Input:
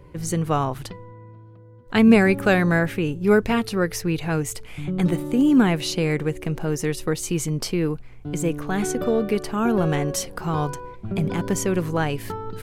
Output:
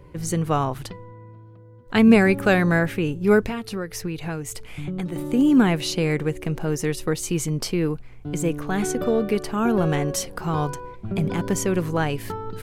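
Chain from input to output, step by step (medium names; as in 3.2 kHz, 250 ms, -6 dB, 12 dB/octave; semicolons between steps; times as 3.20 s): 3.47–5.16 s: compression 12:1, threshold -25 dBFS, peak gain reduction 10.5 dB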